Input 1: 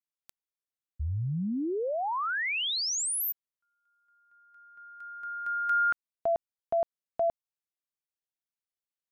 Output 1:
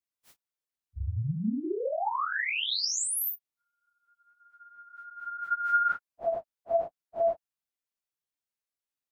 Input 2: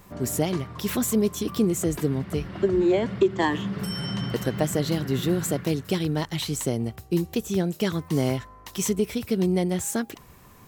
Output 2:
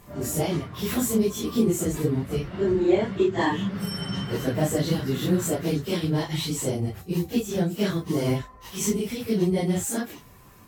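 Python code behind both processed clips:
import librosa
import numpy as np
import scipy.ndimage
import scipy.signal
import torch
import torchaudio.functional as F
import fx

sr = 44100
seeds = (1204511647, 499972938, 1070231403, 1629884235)

y = fx.phase_scramble(x, sr, seeds[0], window_ms=100)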